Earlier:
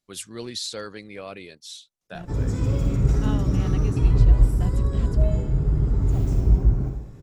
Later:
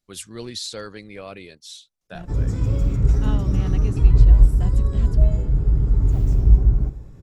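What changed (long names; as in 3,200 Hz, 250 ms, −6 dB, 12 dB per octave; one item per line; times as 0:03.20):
background: send −10.5 dB
master: add low-shelf EQ 75 Hz +9.5 dB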